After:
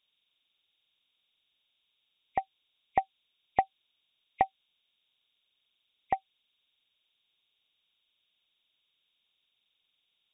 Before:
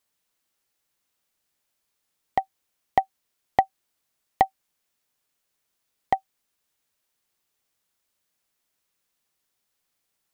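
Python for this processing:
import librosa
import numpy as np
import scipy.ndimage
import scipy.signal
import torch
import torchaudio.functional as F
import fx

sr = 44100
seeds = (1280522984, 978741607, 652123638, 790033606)

y = fx.freq_compress(x, sr, knee_hz=2100.0, ratio=4.0)
y = y * librosa.db_to_amplitude(-6.0)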